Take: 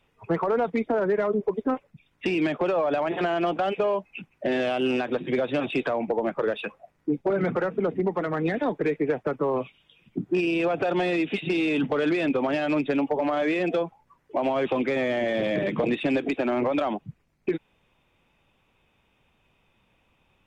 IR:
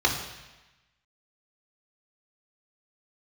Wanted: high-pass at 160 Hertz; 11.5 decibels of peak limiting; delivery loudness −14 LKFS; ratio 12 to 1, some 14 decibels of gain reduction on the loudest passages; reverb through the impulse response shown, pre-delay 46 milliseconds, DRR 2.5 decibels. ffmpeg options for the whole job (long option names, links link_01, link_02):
-filter_complex "[0:a]highpass=160,acompressor=threshold=-35dB:ratio=12,alimiter=level_in=10.5dB:limit=-24dB:level=0:latency=1,volume=-10.5dB,asplit=2[link_01][link_02];[1:a]atrim=start_sample=2205,adelay=46[link_03];[link_02][link_03]afir=irnorm=-1:irlink=0,volume=-17dB[link_04];[link_01][link_04]amix=inputs=2:normalize=0,volume=27dB"